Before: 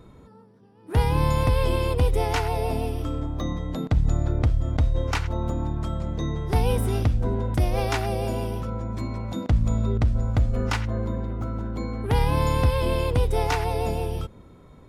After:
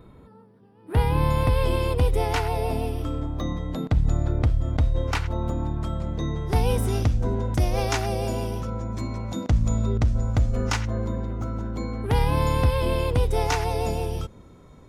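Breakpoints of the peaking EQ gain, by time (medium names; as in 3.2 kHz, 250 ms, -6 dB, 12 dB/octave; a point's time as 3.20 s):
peaking EQ 6.3 kHz 0.62 oct
1.20 s -12.5 dB
1.75 s -1.5 dB
6.22 s -1.5 dB
6.92 s +7.5 dB
11.60 s +7.5 dB
12.30 s -1.5 dB
13.04 s -1.5 dB
13.58 s +7 dB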